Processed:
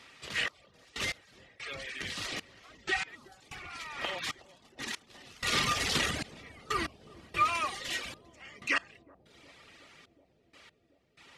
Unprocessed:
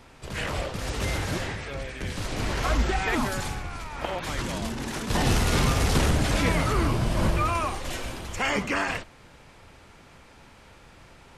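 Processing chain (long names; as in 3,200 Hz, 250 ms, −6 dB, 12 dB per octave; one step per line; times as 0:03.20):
meter weighting curve D
reverb reduction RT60 0.89 s
hollow resonant body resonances 1,200/1,900 Hz, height 10 dB
gate pattern "xxx...x...xx" 94 BPM −24 dB
bucket-brigade delay 366 ms, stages 2,048, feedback 80%, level −18.5 dB
level −7.5 dB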